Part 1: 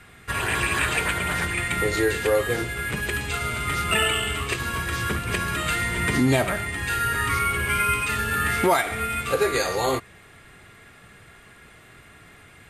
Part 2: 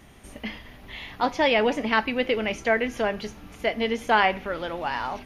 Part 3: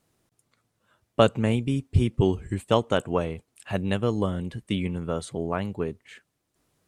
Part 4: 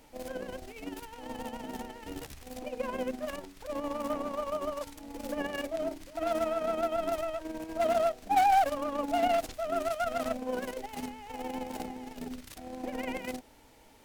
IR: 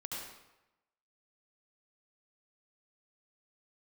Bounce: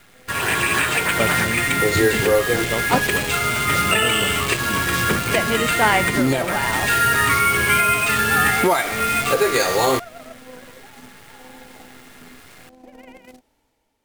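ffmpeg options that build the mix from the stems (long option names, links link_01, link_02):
-filter_complex "[0:a]highpass=120,acrusher=bits=6:dc=4:mix=0:aa=0.000001,alimiter=limit=-14dB:level=0:latency=1:release=321,volume=1.5dB[link_01];[1:a]adelay=1700,volume=-1dB,asplit=3[link_02][link_03][link_04];[link_02]atrim=end=3.07,asetpts=PTS-STARTPTS,afade=type=out:start_time=3.066:duration=0.004:curve=hsin[link_05];[link_03]atrim=start=3.07:end=4.99,asetpts=PTS-STARTPTS,volume=0[link_06];[link_04]atrim=start=4.99,asetpts=PTS-STARTPTS,afade=type=in:duration=0.004:curve=hsin[link_07];[link_05][link_06][link_07]concat=n=3:v=0:a=1[link_08];[2:a]volume=-10dB[link_09];[3:a]volume=-13.5dB[link_10];[link_01][link_08][link_09][link_10]amix=inputs=4:normalize=0,dynaudnorm=framelen=110:gausssize=9:maxgain=6dB"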